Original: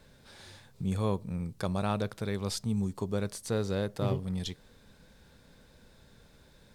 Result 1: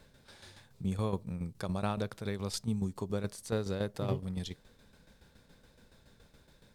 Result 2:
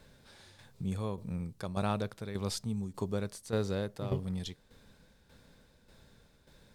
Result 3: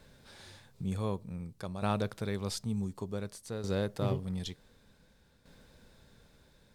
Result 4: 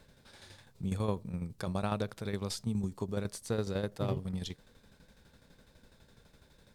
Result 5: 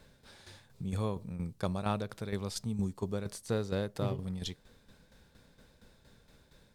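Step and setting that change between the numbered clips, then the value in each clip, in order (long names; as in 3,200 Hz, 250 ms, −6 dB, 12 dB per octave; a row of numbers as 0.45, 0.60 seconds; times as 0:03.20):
shaped tremolo, speed: 7.1, 1.7, 0.55, 12, 4.3 Hertz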